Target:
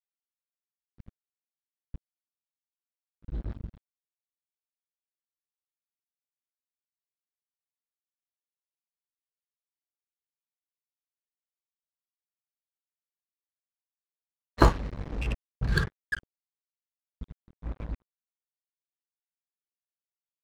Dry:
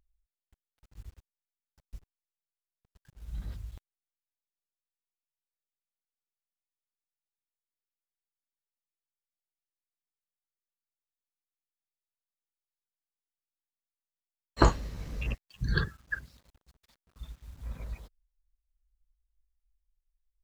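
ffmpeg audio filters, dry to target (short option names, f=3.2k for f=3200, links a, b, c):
-af "acrusher=bits=5:mix=0:aa=0.5,adynamicsmooth=sensitivity=7.5:basefreq=1.7k,volume=2.5dB"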